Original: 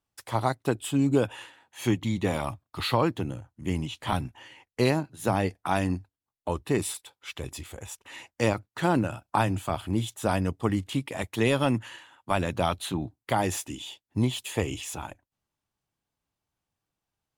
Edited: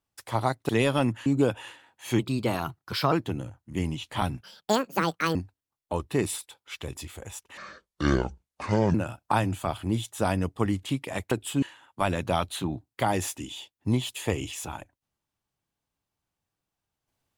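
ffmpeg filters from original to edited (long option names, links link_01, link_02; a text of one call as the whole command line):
ffmpeg -i in.wav -filter_complex "[0:a]asplit=11[link_01][link_02][link_03][link_04][link_05][link_06][link_07][link_08][link_09][link_10][link_11];[link_01]atrim=end=0.692[link_12];[link_02]atrim=start=11.348:end=11.922[link_13];[link_03]atrim=start=0.998:end=1.934[link_14];[link_04]atrim=start=1.93:end=3.03,asetpts=PTS-STARTPTS,asetrate=52038,aresample=44100,atrim=end_sample=41110,asetpts=PTS-STARTPTS[link_15];[link_05]atrim=start=3.026:end=4.334[link_16];[link_06]atrim=start=4.33:end=5.91,asetpts=PTS-STARTPTS,asetrate=74970,aresample=44100,atrim=end_sample=40987,asetpts=PTS-STARTPTS[link_17];[link_07]atrim=start=5.906:end=8.134[link_18];[link_08]atrim=start=8.13:end=8.98,asetpts=PTS-STARTPTS,asetrate=27342,aresample=44100[link_19];[link_09]atrim=start=8.976:end=11.352[link_20];[link_10]atrim=start=0.688:end=1.002[link_21];[link_11]atrim=start=11.918[link_22];[link_12][link_13]acrossfade=duration=0.004:curve1=hsin:curve2=hsin[link_23];[link_23][link_14]acrossfade=duration=0.004:curve1=hsin:curve2=hsin[link_24];[link_24][link_15]acrossfade=duration=0.004:curve1=hsin:curve2=hsin[link_25];[link_25][link_16]acrossfade=duration=0.004:curve1=hsin:curve2=hsin[link_26];[link_26][link_17]acrossfade=duration=0.004:curve1=hsin:curve2=hsin[link_27];[link_27][link_18]acrossfade=duration=0.004:curve1=hsin:curve2=hsin[link_28];[link_28][link_19]acrossfade=duration=0.004:curve1=hsin:curve2=hsin[link_29];[link_29][link_20]acrossfade=duration=0.004:curve1=hsin:curve2=hsin[link_30];[link_30][link_21]acrossfade=duration=0.004:curve1=hsin:curve2=hsin[link_31];[link_31][link_22]acrossfade=duration=0.004:curve1=hsin:curve2=hsin" out.wav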